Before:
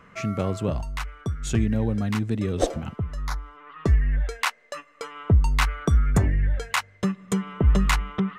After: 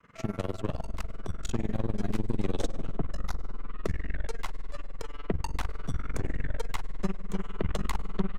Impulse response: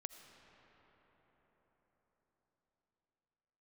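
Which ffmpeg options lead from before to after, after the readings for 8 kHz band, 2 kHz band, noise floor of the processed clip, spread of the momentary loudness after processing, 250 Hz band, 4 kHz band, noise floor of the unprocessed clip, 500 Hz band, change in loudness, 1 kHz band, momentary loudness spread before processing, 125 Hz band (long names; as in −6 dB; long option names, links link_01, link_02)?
−11.0 dB, −12.5 dB, −40 dBFS, 8 LU, −8.5 dB, −11.5 dB, −54 dBFS, −7.0 dB, −11.0 dB, −9.5 dB, 12 LU, −11.5 dB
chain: -filter_complex "[0:a]agate=range=-33dB:threshold=-51dB:ratio=3:detection=peak,acrossover=split=220|790|2500|5100[link_01][link_02][link_03][link_04][link_05];[link_01]acompressor=threshold=-32dB:ratio=4[link_06];[link_02]acompressor=threshold=-32dB:ratio=4[link_07];[link_03]acompressor=threshold=-48dB:ratio=4[link_08];[link_04]acompressor=threshold=-49dB:ratio=4[link_09];[link_05]acompressor=threshold=-51dB:ratio=4[link_10];[link_06][link_07][link_08][link_09][link_10]amix=inputs=5:normalize=0,aeval=exprs='0.178*(cos(1*acos(clip(val(0)/0.178,-1,1)))-cos(1*PI/2))+0.00794*(cos(7*acos(clip(val(0)/0.178,-1,1)))-cos(7*PI/2))+0.0224*(cos(8*acos(clip(val(0)/0.178,-1,1)))-cos(8*PI/2))':channel_layout=same,asplit=2[link_11][link_12];[1:a]atrim=start_sample=2205,asetrate=37485,aresample=44100[link_13];[link_12][link_13]afir=irnorm=-1:irlink=0,volume=3dB[link_14];[link_11][link_14]amix=inputs=2:normalize=0,tremolo=f=20:d=0.919,volume=-4dB"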